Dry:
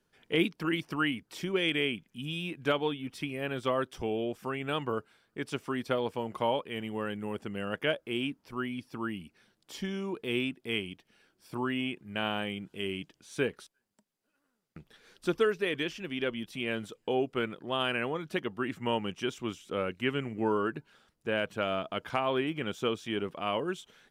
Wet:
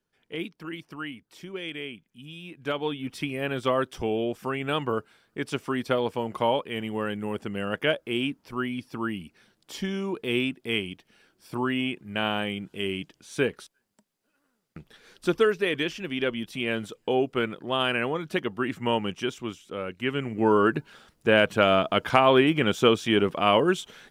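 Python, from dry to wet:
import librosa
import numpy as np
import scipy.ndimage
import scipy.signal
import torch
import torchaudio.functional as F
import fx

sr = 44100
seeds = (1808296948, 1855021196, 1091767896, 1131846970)

y = fx.gain(x, sr, db=fx.line((2.41, -6.5), (3.05, 5.0), (19.12, 5.0), (19.78, -1.5), (20.75, 11.0)))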